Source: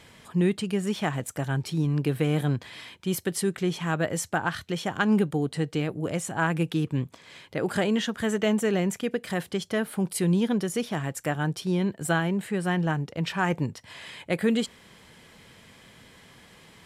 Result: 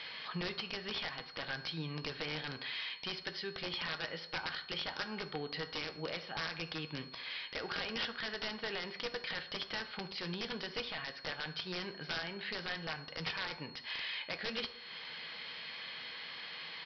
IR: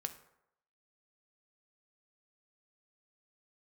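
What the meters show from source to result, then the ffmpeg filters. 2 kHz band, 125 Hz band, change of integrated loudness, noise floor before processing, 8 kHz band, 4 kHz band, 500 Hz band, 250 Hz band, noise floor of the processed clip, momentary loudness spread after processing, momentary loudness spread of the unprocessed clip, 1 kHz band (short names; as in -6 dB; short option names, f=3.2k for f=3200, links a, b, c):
-6.5 dB, -20.5 dB, -12.5 dB, -54 dBFS, -24.5 dB, 0.0 dB, -15.5 dB, -20.5 dB, -51 dBFS, 5 LU, 7 LU, -12.0 dB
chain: -filter_complex "[0:a]asplit=2[a][b];[b]alimiter=limit=-17.5dB:level=0:latency=1:release=310,volume=0dB[c];[a][c]amix=inputs=2:normalize=0,bandpass=f=3.3k:t=q:w=0.65:csg=0,acompressor=threshold=-46dB:ratio=2.5,aresample=11025,aeval=exprs='(mod(53.1*val(0)+1,2)-1)/53.1':c=same,aresample=44100,aeval=exprs='val(0)+0.001*sin(2*PI*4300*n/s)':c=same[d];[1:a]atrim=start_sample=2205[e];[d][e]afir=irnorm=-1:irlink=0,volume=6.5dB"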